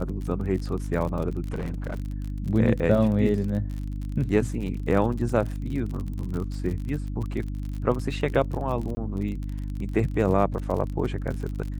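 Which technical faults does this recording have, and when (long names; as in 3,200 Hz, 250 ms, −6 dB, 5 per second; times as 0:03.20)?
surface crackle 46 per second −31 dBFS
mains hum 50 Hz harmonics 6 −31 dBFS
0:01.48–0:02.00: clipping −25.5 dBFS
0:08.95–0:08.97: drop-out 20 ms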